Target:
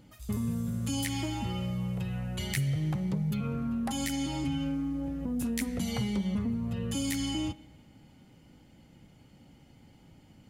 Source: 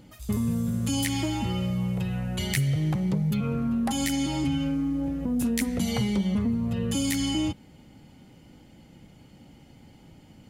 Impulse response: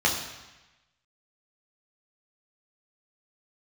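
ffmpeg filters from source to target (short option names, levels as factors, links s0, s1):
-filter_complex "[0:a]asplit=2[s0][s1];[1:a]atrim=start_sample=2205,asetrate=26901,aresample=44100[s2];[s1][s2]afir=irnorm=-1:irlink=0,volume=0.0188[s3];[s0][s3]amix=inputs=2:normalize=0,volume=0.562"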